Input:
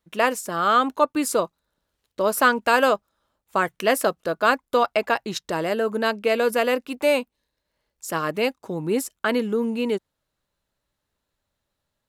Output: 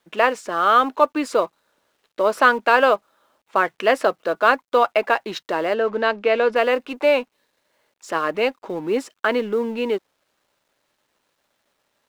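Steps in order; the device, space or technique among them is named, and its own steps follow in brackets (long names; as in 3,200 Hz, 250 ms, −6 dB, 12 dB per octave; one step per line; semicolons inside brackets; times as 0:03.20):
phone line with mismatched companding (band-pass filter 320–3,300 Hz; mu-law and A-law mismatch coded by mu)
0:05.74–0:06.56: low-pass filter 5,000 Hz 12 dB per octave
level +3 dB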